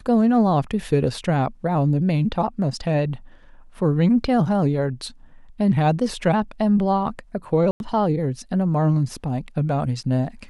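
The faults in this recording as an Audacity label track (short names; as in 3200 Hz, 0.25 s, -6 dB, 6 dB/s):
7.710000	7.800000	gap 91 ms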